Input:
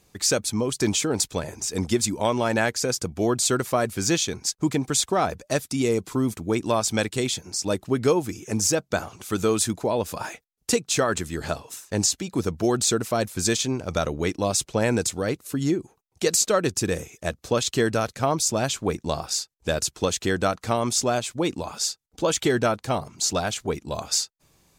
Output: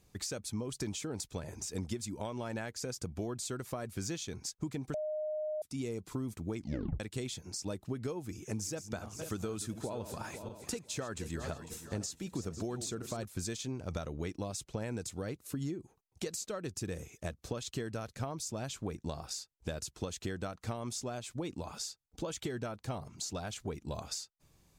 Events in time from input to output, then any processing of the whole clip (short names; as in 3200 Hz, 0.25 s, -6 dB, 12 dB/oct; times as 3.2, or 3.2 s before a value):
4.94–5.62 bleep 614 Hz -11.5 dBFS
6.56 tape stop 0.44 s
8.24–13.25 regenerating reverse delay 0.25 s, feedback 54%, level -12 dB
whole clip: compressor 6:1, threshold -29 dBFS; low shelf 190 Hz +8 dB; gain -8.5 dB